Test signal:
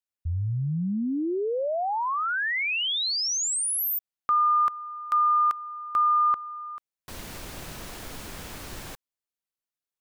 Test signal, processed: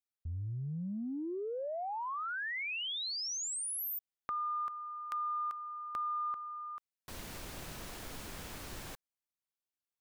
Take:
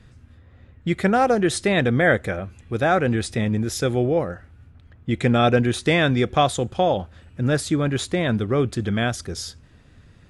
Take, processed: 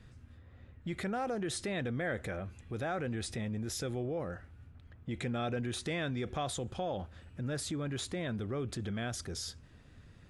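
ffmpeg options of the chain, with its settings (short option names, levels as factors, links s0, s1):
-af "acompressor=threshold=0.02:ratio=2.5:attack=4.9:release=22:knee=1:detection=peak,volume=0.501"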